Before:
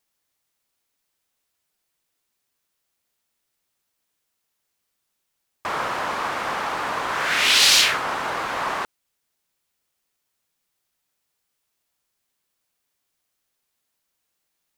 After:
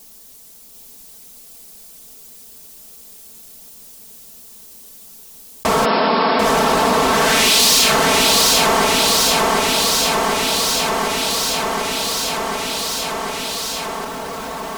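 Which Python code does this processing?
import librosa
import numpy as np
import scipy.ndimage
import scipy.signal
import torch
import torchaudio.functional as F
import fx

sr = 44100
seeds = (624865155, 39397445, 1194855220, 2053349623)

p1 = fx.peak_eq(x, sr, hz=1700.0, db=-14.5, octaves=2.5)
p2 = fx.leveller(p1, sr, passes=3)
p3 = fx.brickwall_bandpass(p2, sr, low_hz=160.0, high_hz=5500.0, at=(5.84, 6.44), fade=0.02)
p4 = p3 + 0.87 * np.pad(p3, (int(4.5 * sr / 1000.0), 0))[:len(p3)]
p5 = p4 + fx.echo_feedback(p4, sr, ms=742, feedback_pct=55, wet_db=-3.5, dry=0)
p6 = fx.env_flatten(p5, sr, amount_pct=70)
y = p6 * librosa.db_to_amplitude(-1.0)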